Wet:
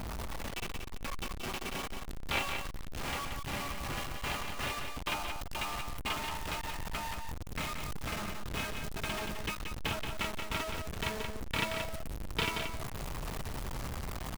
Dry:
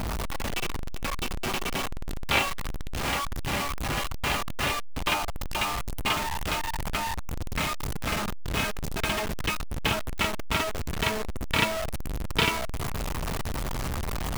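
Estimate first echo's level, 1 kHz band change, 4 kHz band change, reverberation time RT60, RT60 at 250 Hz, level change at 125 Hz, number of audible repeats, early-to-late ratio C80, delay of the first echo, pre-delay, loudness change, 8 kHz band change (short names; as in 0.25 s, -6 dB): -6.0 dB, -8.0 dB, -8.0 dB, none, none, -8.0 dB, 1, none, 0.178 s, none, -8.0 dB, -8.0 dB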